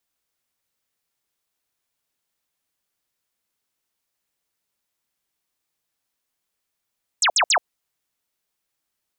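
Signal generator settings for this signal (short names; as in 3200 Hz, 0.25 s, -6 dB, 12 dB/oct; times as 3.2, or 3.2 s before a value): burst of laser zaps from 8700 Hz, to 570 Hz, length 0.08 s sine, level -14.5 dB, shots 3, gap 0.06 s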